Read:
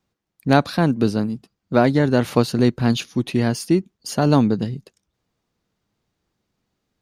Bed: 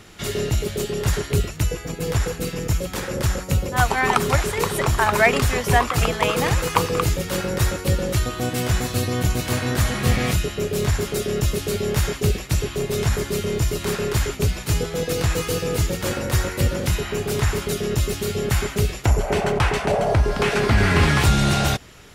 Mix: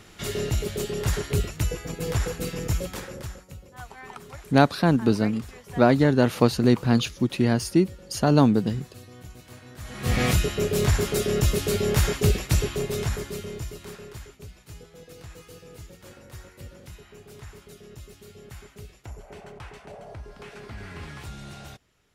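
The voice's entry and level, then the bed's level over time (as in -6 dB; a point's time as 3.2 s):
4.05 s, -2.0 dB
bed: 2.84 s -4 dB
3.57 s -23 dB
9.76 s -23 dB
10.2 s -0.5 dB
12.58 s -0.5 dB
14.4 s -22.5 dB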